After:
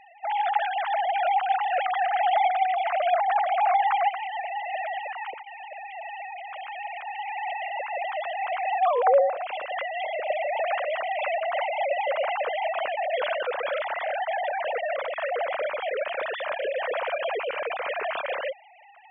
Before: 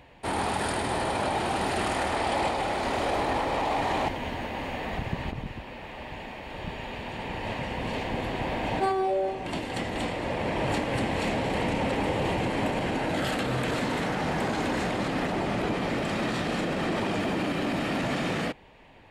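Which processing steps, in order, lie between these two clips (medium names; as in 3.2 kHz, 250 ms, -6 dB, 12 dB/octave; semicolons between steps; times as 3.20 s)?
formants replaced by sine waves; trim +2 dB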